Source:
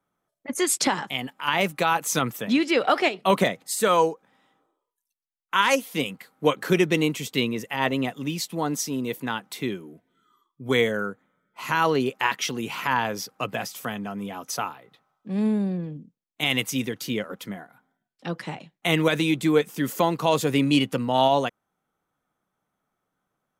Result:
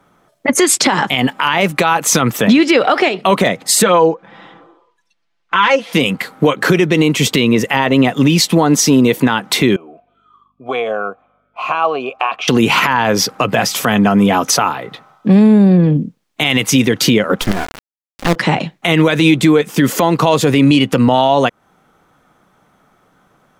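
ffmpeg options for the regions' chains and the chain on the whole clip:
-filter_complex "[0:a]asettb=1/sr,asplit=3[s0][s1][s2];[s0]atrim=end=3.824[s3];[s1]atrim=start=3.82:end=5.93,asetpts=PTS-STARTPTS,afade=t=in:d=0.004:c=qsin,afade=t=out:st=2.106:d=0.004:c=qsin,lowpass=3900,aecho=1:1:5.9:0.72,atrim=end_sample=93051[s4];[s2]atrim=start=5.926[s5];[s3][s4]acrossfade=d=0.004:c1=hsin:c2=qsin[s6];[s6][s5]acrossfade=d=0.004:c1=qsin:c2=hsin,asettb=1/sr,asplit=3[s7][s8][s9];[s7]atrim=end=9.764[s10];[s8]atrim=start=9.76:end=12.48,asetpts=PTS-STARTPTS,afade=t=in:d=0.004:c=qsin,afade=t=out:st=2.716:d=0.004:c=qsin,aeval=exprs='val(0)+0.001*(sin(2*PI*50*n/s)+sin(2*PI*2*50*n/s)/2+sin(2*PI*3*50*n/s)/3+sin(2*PI*4*50*n/s)/4+sin(2*PI*5*50*n/s)/5)':c=same,acompressor=threshold=0.0631:ratio=4:attack=3.2:release=140:knee=1:detection=peak,asplit=3[s11][s12][s13];[s11]bandpass=f=730:t=q:w=8,volume=1[s14];[s12]bandpass=f=1090:t=q:w=8,volume=0.501[s15];[s13]bandpass=f=2440:t=q:w=8,volume=0.355[s16];[s14][s15][s16]amix=inputs=3:normalize=0[s17];[s9]atrim=start=12.476[s18];[s10][s17]acrossfade=d=0.004:c1=hsin:c2=qsin[s19];[s19][s18]acrossfade=d=0.004:c1=qsin:c2=hsin,asettb=1/sr,asplit=3[s20][s21][s22];[s20]atrim=end=17.414[s23];[s21]atrim=start=17.41:end=18.36,asetpts=PTS-STARTPTS,afade=t=in:d=0.004:c=qsin,afade=t=out:st=0.946:d=0.004:c=qsin,equalizer=f=2400:w=4.9:g=-8,acompressor=mode=upward:threshold=0.00501:ratio=2.5:attack=3.2:release=140:knee=2.83:detection=peak,acrusher=bits=5:dc=4:mix=0:aa=0.000001[s24];[s22]atrim=start=18.356[s25];[s23][s24]acrossfade=d=0.004:c1=hsin:c2=qsin[s26];[s26][s25]acrossfade=d=0.004:c1=qsin:c2=hsin,highshelf=f=8800:g=-11.5,acompressor=threshold=0.0251:ratio=4,alimiter=level_in=20:limit=0.891:release=50:level=0:latency=1,volume=0.891"

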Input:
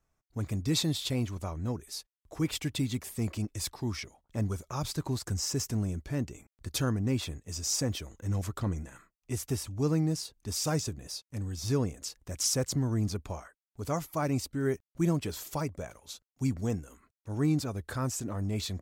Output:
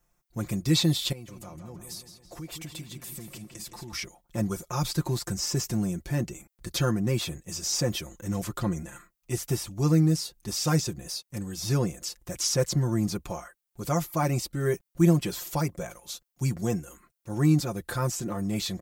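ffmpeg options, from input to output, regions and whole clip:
-filter_complex "[0:a]asettb=1/sr,asplit=3[s0][s1][s2];[s0]atrim=end=1.124[s3];[s1]atrim=start=1.12:end=3.93,asetpts=PTS-STARTPTS,afade=t=in:d=0.004:c=qsin,afade=t=out:st=2.806:d=0.004:c=qsin,acompressor=threshold=0.00631:ratio=5:attack=3.2:release=140:knee=1:detection=peak,asplit=2[s4][s5];[s5]adelay=165,lowpass=f=4700:p=1,volume=0.447,asplit=2[s6][s7];[s7]adelay=165,lowpass=f=4700:p=1,volume=0.54,asplit=2[s8][s9];[s9]adelay=165,lowpass=f=4700:p=1,volume=0.54,asplit=2[s10][s11];[s11]adelay=165,lowpass=f=4700:p=1,volume=0.54,asplit=2[s12][s13];[s13]adelay=165,lowpass=f=4700:p=1,volume=0.54,asplit=2[s14][s15];[s15]adelay=165,lowpass=f=4700:p=1,volume=0.54,asplit=2[s16][s17];[s17]adelay=165,lowpass=f=4700:p=1,volume=0.54[s18];[s4][s6][s8][s10][s12][s14][s16][s18]amix=inputs=8:normalize=0,atrim=end_sample=123921[s19];[s2]atrim=start=3.926[s20];[s3][s19]acrossfade=d=0.004:c1=hsin:c2=qsin[s21];[s21][s20]acrossfade=d=0.004:c1=qsin:c2=hsin,highshelf=f=9600:g=11,acrossover=split=5500[s22][s23];[s23]acompressor=threshold=0.00891:ratio=4:attack=1:release=60[s24];[s22][s24]amix=inputs=2:normalize=0,aecho=1:1:5.7:0.75,volume=1.41"

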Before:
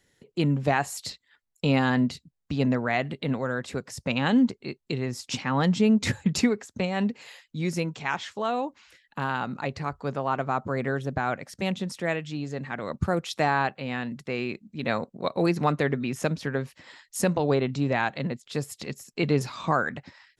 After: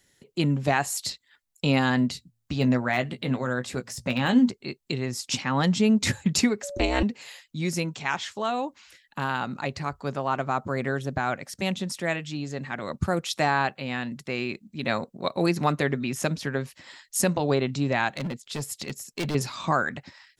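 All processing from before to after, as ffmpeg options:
-filter_complex "[0:a]asettb=1/sr,asplit=3[s0][s1][s2];[s0]atrim=end=2.144[s3];[s1]atrim=start=2.14:end=4.5,asetpts=PTS-STARTPTS,afade=t=in:d=0.004:c=qsin,afade=t=out:st=2.356:d=0.004:c=qsin,bandreject=f=114:t=h:w=4,bandreject=f=228:t=h:w=4,deesser=0.85,asplit=2[s4][s5];[s5]adelay=16,volume=0.376[s6];[s4][s6]amix=inputs=2:normalize=0,atrim=end_sample=104076[s7];[s2]atrim=start=4.496[s8];[s3][s7]acrossfade=d=0.004:c1=hsin:c2=qsin[s9];[s9][s8]acrossfade=d=0.004:c1=qsin:c2=hsin,asettb=1/sr,asplit=3[s10][s11][s12];[s10]atrim=end=6.634[s13];[s11]atrim=start=6.63:end=7.03,asetpts=PTS-STARTPTS,afade=t=in:d=0.004:c=qsin,afade=t=out:st=0.396:d=0.004:c=qsin,acontrast=53,aeval=exprs='val(0)*sin(2*PI*130*n/s)':c=same,aeval=exprs='val(0)+0.02*sin(2*PI*570*n/s)':c=same[s14];[s12]atrim=start=7.026[s15];[s13][s14]acrossfade=d=0.004:c1=hsin:c2=qsin[s16];[s16][s15]acrossfade=d=0.004:c1=qsin:c2=hsin,asettb=1/sr,asplit=3[s17][s18][s19];[s17]atrim=end=18.164[s20];[s18]atrim=start=18.16:end=19.35,asetpts=PTS-STARTPTS,afade=t=in:d=0.004:c=qsin,afade=t=out:st=1.186:d=0.004:c=qsin,deesser=0.6,volume=20,asoftclip=hard,volume=0.0501[s21];[s19]atrim=start=19.346[s22];[s20][s21]acrossfade=d=0.004:c1=hsin:c2=qsin[s23];[s23][s22]acrossfade=d=0.004:c1=qsin:c2=hsin,highshelf=f=3800:g=7.5,bandreject=f=470:w=12"

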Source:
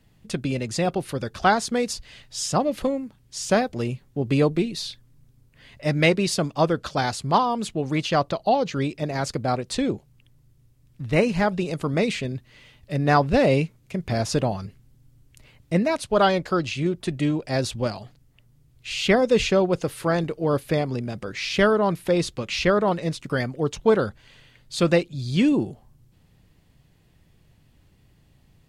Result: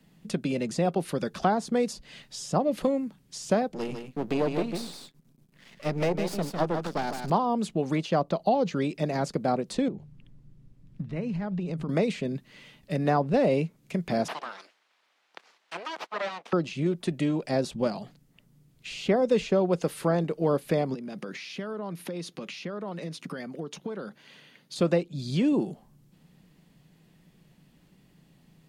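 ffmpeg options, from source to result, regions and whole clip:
-filter_complex "[0:a]asettb=1/sr,asplit=3[s0][s1][s2];[s0]atrim=end=3.744[s3];[s1]atrim=start=3.74:end=7.3,asetpts=PTS-STARTPTS,afade=t=in:d=0.004:c=qsin,afade=t=out:st=3.556:d=0.004:c=qsin,aeval=exprs='max(val(0),0)':c=same,aecho=1:1:152:0.422,atrim=end_sample=156996[s4];[s2]atrim=start=7.296[s5];[s3][s4]acrossfade=d=0.004:c1=hsin:c2=qsin[s6];[s6][s5]acrossfade=d=0.004:c1=qsin:c2=hsin,asettb=1/sr,asplit=3[s7][s8][s9];[s7]atrim=end=9.884[s10];[s8]atrim=start=9.88:end=11.89,asetpts=PTS-STARTPTS,afade=t=in:d=0.004:c=qsin,afade=t=out:st=2.006:d=0.004:c=qsin,aemphasis=mode=reproduction:type=bsi,bandreject=f=50:t=h:w=6,bandreject=f=100:t=h:w=6,bandreject=f=150:t=h:w=6,acompressor=threshold=0.0282:ratio=6:attack=3.2:release=140:knee=1:detection=peak[s11];[s9]atrim=start=11.886[s12];[s10][s11]acrossfade=d=0.004:c1=hsin:c2=qsin[s13];[s13][s12]acrossfade=d=0.004:c1=qsin:c2=hsin,asettb=1/sr,asplit=3[s14][s15][s16];[s14]atrim=end=14.284[s17];[s15]atrim=start=14.28:end=16.53,asetpts=PTS-STARTPTS,afade=t=in:d=0.004:c=qsin,afade=t=out:st=2.246:d=0.004:c=qsin,aemphasis=mode=production:type=riaa,aeval=exprs='abs(val(0))':c=same,highpass=670,lowpass=3700[s18];[s16]atrim=start=16.526[s19];[s17][s18]acrossfade=d=0.004:c1=hsin:c2=qsin[s20];[s20][s19]acrossfade=d=0.004:c1=qsin:c2=hsin,asettb=1/sr,asplit=3[s21][s22][s23];[s21]atrim=end=20.944[s24];[s22]atrim=start=20.94:end=24.76,asetpts=PTS-STARTPTS,afade=t=in:d=0.004:c=qsin,afade=t=out:st=3.816:d=0.004:c=qsin,bandreject=f=7700:w=6.3,acompressor=threshold=0.0251:ratio=12:attack=3.2:release=140:knee=1:detection=peak,highpass=180[s25];[s23]atrim=start=24.756[s26];[s24][s25]acrossfade=d=0.004:c1=hsin:c2=qsin[s27];[s27][s26]acrossfade=d=0.004:c1=qsin:c2=hsin,lowshelf=f=130:t=q:w=3:g=-8.5,acrossover=split=370|940[s28][s29][s30];[s28]acompressor=threshold=0.0355:ratio=4[s31];[s29]acompressor=threshold=0.0794:ratio=4[s32];[s30]acompressor=threshold=0.0112:ratio=4[s33];[s31][s32][s33]amix=inputs=3:normalize=0"

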